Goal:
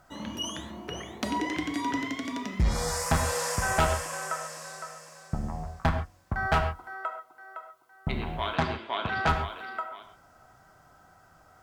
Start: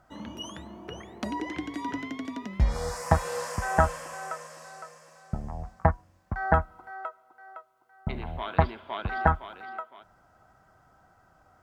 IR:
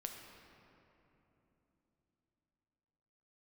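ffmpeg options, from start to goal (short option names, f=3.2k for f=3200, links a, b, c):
-filter_complex "[0:a]highshelf=f=2.7k:g=8,volume=20dB,asoftclip=hard,volume=-20dB,asettb=1/sr,asplit=3[a][b][c];[a]atrim=end=8.554[d];[b]atrim=start=8.55:end=9.29,asetpts=PTS-STARTPTS,afade=t=in:d=0.004:c=qsin,afade=t=out:st=0.736:d=0.004:c=qsin,highpass=120,lowpass=7.6k[e];[c]atrim=start=9.286[f];[d][e]acrossfade=d=0.004:c1=hsin:c2=qsin[g];[g][f]acrossfade=d=0.004:c1=qsin:c2=hsin[h];[1:a]atrim=start_sample=2205,atrim=end_sample=6174,asetrate=42777,aresample=44100[i];[h][i]afir=irnorm=-1:irlink=0,volume=5.5dB"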